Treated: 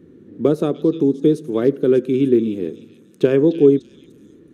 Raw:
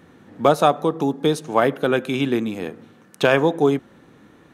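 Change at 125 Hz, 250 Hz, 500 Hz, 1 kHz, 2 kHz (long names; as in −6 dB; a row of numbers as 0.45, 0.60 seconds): +2.0, +5.5, +3.0, −16.0, −12.5 decibels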